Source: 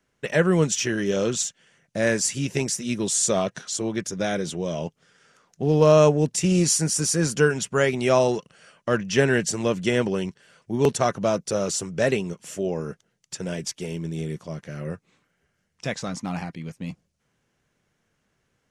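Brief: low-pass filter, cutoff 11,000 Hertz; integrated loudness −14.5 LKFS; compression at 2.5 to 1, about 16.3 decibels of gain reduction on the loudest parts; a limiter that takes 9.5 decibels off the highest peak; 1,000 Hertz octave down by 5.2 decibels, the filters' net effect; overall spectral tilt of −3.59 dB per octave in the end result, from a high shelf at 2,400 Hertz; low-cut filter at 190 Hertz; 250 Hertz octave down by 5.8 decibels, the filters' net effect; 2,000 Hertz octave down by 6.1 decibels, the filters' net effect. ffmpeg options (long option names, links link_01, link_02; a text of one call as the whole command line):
ffmpeg -i in.wav -af "highpass=190,lowpass=11000,equalizer=frequency=250:width_type=o:gain=-5.5,equalizer=frequency=1000:width_type=o:gain=-5.5,equalizer=frequency=2000:width_type=o:gain=-8,highshelf=frequency=2400:gain=4,acompressor=threshold=-41dB:ratio=2.5,volume=27dB,alimiter=limit=-4dB:level=0:latency=1" out.wav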